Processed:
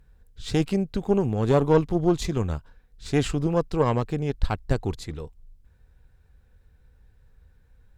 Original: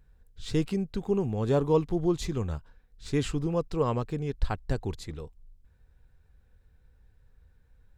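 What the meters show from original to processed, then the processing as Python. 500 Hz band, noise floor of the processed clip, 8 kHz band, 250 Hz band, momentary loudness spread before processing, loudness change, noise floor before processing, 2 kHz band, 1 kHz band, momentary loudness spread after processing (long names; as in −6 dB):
+4.5 dB, −58 dBFS, +4.5 dB, +4.5 dB, 14 LU, +5.0 dB, −63 dBFS, +6.5 dB, +6.0 dB, 15 LU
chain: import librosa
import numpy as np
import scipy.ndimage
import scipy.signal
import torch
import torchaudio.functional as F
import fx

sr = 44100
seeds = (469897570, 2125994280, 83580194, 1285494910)

y = fx.tube_stage(x, sr, drive_db=17.0, bias=0.7)
y = y * librosa.db_to_amplitude(8.0)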